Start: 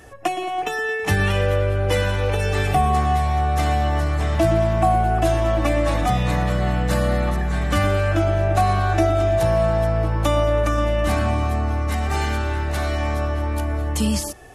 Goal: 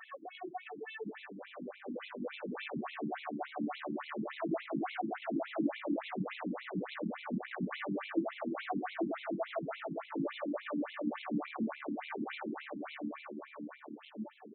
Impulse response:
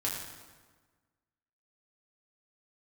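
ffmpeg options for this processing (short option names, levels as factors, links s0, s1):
-filter_complex "[0:a]aeval=exprs='(tanh(17.8*val(0)+0.5)-tanh(0.5))/17.8':c=same,acrossover=split=270[s0][s1];[s1]acompressor=threshold=0.00708:ratio=6[s2];[s0][s2]amix=inputs=2:normalize=0,alimiter=level_in=1.68:limit=0.0631:level=0:latency=1:release=149,volume=0.596,dynaudnorm=f=260:g=17:m=3.76,asplit=2[s3][s4];[s4]aecho=0:1:98|196|294|392|490|588|686:0.316|0.19|0.114|0.0683|0.041|0.0246|0.0148[s5];[s3][s5]amix=inputs=2:normalize=0,afftfilt=real='re*between(b*sr/1024,240*pow(3000/240,0.5+0.5*sin(2*PI*3.5*pts/sr))/1.41,240*pow(3000/240,0.5+0.5*sin(2*PI*3.5*pts/sr))*1.41)':imag='im*between(b*sr/1024,240*pow(3000/240,0.5+0.5*sin(2*PI*3.5*pts/sr))/1.41,240*pow(3000/240,0.5+0.5*sin(2*PI*3.5*pts/sr))*1.41)':win_size=1024:overlap=0.75,volume=1.68"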